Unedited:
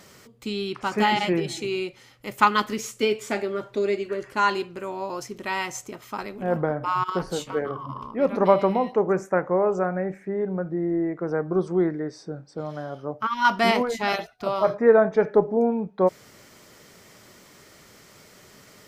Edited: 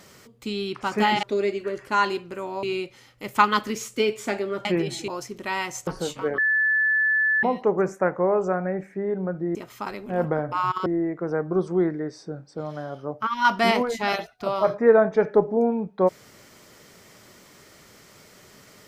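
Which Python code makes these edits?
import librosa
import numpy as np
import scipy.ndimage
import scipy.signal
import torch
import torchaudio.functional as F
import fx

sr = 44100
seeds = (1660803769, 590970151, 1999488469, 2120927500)

y = fx.edit(x, sr, fx.swap(start_s=1.23, length_s=0.43, other_s=3.68, other_length_s=1.4),
    fx.move(start_s=5.87, length_s=1.31, to_s=10.86),
    fx.bleep(start_s=7.69, length_s=1.05, hz=1740.0, db=-18.0), tone=tone)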